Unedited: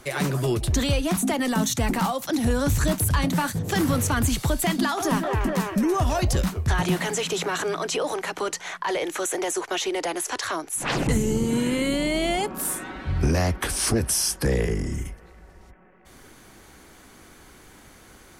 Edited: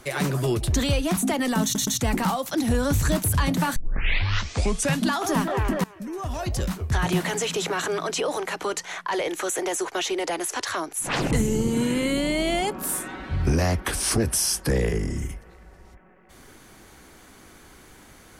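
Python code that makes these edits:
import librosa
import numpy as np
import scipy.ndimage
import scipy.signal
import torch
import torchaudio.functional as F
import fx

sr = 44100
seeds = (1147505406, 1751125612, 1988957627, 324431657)

y = fx.edit(x, sr, fx.stutter(start_s=1.63, slice_s=0.12, count=3),
    fx.tape_start(start_s=3.52, length_s=1.37),
    fx.fade_in_from(start_s=5.6, length_s=1.27, floor_db=-21.0), tone=tone)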